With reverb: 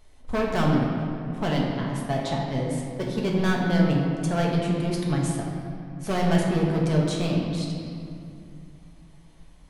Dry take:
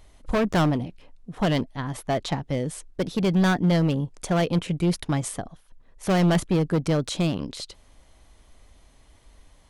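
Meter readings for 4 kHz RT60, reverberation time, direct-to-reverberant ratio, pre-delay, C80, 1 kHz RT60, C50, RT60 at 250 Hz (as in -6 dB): 1.6 s, 2.5 s, -3.0 dB, 5 ms, 2.0 dB, 2.3 s, 0.5 dB, 3.2 s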